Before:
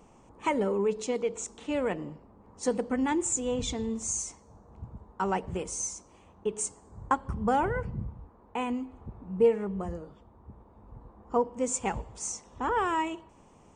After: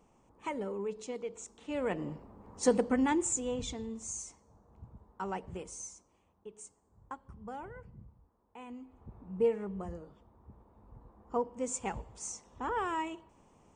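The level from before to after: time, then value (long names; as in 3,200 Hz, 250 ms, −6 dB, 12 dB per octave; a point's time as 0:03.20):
0:01.58 −9.5 dB
0:02.13 +2 dB
0:02.76 +2 dB
0:03.89 −8.5 dB
0:05.59 −8.5 dB
0:06.49 −17.5 dB
0:08.57 −17.5 dB
0:09.16 −6 dB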